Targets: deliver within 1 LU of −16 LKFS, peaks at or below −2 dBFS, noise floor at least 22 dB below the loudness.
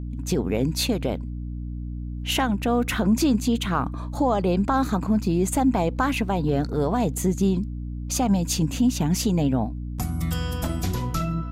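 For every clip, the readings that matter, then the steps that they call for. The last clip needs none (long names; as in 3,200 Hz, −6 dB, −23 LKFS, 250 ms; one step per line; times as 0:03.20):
mains hum 60 Hz; hum harmonics up to 300 Hz; level of the hum −29 dBFS; integrated loudness −24.5 LKFS; sample peak −11.0 dBFS; target loudness −16.0 LKFS
→ hum removal 60 Hz, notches 5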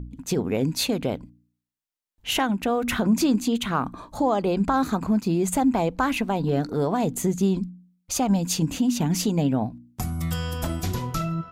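mains hum none found; integrated loudness −24.5 LKFS; sample peak −11.5 dBFS; target loudness −16.0 LKFS
→ level +8.5 dB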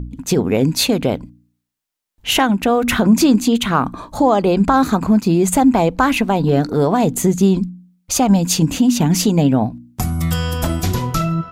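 integrated loudness −16.0 LKFS; sample peak −3.0 dBFS; background noise floor −74 dBFS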